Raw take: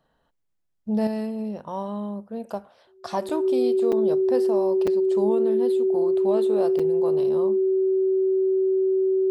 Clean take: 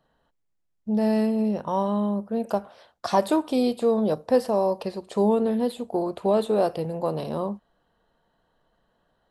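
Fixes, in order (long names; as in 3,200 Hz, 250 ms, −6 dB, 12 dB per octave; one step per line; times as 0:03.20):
notch filter 380 Hz, Q 30
repair the gap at 0:03.29/0:03.92/0:04.87/0:06.79, 5.2 ms
level correction +6 dB, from 0:01.07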